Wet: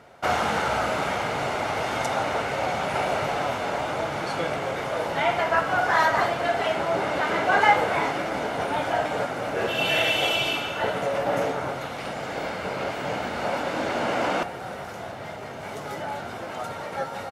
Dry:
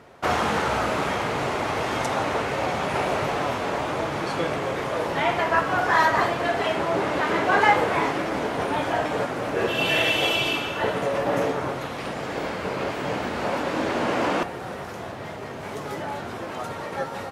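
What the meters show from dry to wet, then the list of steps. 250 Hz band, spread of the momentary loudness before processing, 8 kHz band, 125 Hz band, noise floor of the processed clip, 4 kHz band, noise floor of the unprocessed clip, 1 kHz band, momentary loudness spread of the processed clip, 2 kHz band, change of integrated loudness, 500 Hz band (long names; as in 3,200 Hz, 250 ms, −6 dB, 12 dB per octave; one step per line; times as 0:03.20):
−4.0 dB, 12 LU, −0.5 dB, −3.0 dB, −36 dBFS, −0.5 dB, −35 dBFS, −0.5 dB, 12 LU, −0.5 dB, −1.0 dB, −1.0 dB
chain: low-shelf EQ 150 Hz −5.5 dB
comb filter 1.4 ms, depth 31%
level −1 dB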